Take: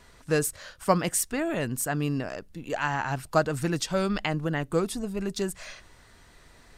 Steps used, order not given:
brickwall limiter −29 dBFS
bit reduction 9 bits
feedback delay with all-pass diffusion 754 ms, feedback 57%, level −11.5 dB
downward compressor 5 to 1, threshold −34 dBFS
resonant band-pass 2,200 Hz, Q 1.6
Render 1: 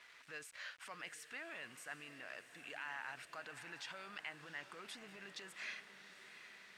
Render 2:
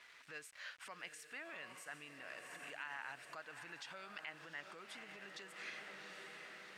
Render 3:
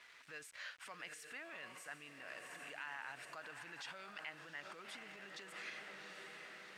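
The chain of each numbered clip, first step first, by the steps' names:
brickwall limiter, then feedback delay with all-pass diffusion, then bit reduction, then resonant band-pass, then downward compressor
feedback delay with all-pass diffusion, then downward compressor, then bit reduction, then brickwall limiter, then resonant band-pass
feedback delay with all-pass diffusion, then brickwall limiter, then downward compressor, then bit reduction, then resonant band-pass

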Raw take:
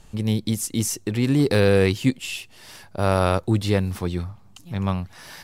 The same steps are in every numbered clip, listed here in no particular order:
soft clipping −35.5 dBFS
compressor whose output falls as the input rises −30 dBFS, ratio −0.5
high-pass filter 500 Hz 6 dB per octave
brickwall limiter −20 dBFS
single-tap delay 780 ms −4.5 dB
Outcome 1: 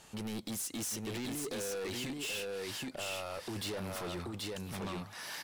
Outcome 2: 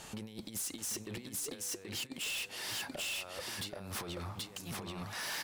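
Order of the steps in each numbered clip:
high-pass filter, then brickwall limiter, then compressor whose output falls as the input rises, then single-tap delay, then soft clipping
compressor whose output falls as the input rises, then single-tap delay, then brickwall limiter, then high-pass filter, then soft clipping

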